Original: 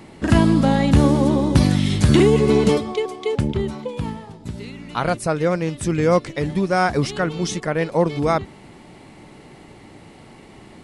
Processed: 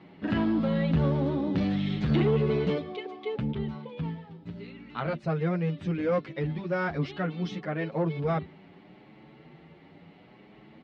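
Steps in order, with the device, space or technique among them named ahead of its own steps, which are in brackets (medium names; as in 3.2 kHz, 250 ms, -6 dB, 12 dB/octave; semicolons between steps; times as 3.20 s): barber-pole flanger into a guitar amplifier (endless flanger 8.1 ms +0.7 Hz; saturation -12.5 dBFS, distortion -16 dB; cabinet simulation 83–3700 Hz, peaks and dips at 110 Hz -9 dB, 160 Hz +7 dB, 970 Hz -3 dB); trim -6 dB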